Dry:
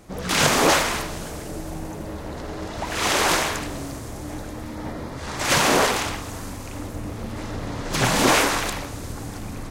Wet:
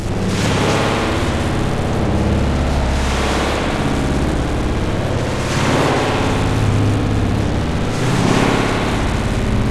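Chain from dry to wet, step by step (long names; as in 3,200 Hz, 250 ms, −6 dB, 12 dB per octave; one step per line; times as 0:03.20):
linear delta modulator 64 kbit/s, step −17 dBFS
low-pass filter 7,700 Hz 12 dB per octave
low-shelf EQ 470 Hz +11.5 dB
upward compression, threshold −17 dBFS
high-shelf EQ 5,400 Hz +6 dB
spring reverb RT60 3.6 s, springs 58 ms, chirp 30 ms, DRR −6.5 dB
wow of a warped record 78 rpm, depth 100 cents
level −8 dB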